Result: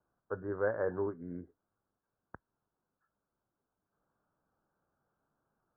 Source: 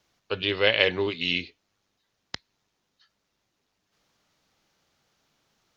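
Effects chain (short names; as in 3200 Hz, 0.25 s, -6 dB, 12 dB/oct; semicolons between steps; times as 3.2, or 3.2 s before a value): steep low-pass 1600 Hz 96 dB/oct; gain -7.5 dB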